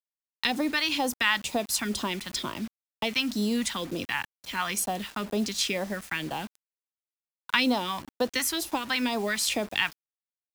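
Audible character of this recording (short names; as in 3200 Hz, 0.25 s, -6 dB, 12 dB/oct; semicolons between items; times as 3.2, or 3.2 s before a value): phasing stages 2, 2.1 Hz, lowest notch 460–2000 Hz; a quantiser's noise floor 8-bit, dither none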